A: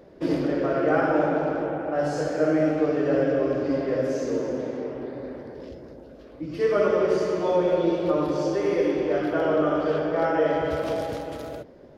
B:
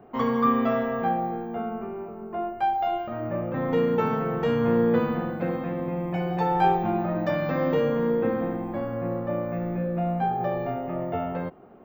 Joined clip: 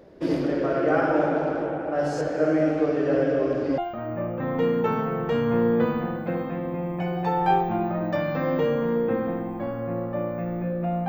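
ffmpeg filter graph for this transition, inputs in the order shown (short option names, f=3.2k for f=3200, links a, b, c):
-filter_complex "[0:a]asettb=1/sr,asplit=3[a][b][c];[a]atrim=end=2.214[d];[b]atrim=start=2.21:end=3.78,asetpts=PTS-STARTPTS,afade=t=in:d=0.004:c=qsin,afade=t=out:st=1.566:d=0.004:c=qsin,acrossover=split=3900[e][f];[f]acompressor=threshold=-55dB:ratio=4:attack=1:release=60[g];[e][g]amix=inputs=2:normalize=0[h];[c]atrim=start=3.776[i];[d][h]acrossfade=d=0.004:c1=hsin:c2=qsin[j];[j][i]acrossfade=d=0.004:c1=qsin:c2=hsin,apad=whole_dur=11.08,atrim=end=11.08,atrim=end=3.782[k];[1:a]atrim=start=2.918:end=10.22[l];[k][l]acrossfade=d=0.004:c1=hsin:c2=hsin"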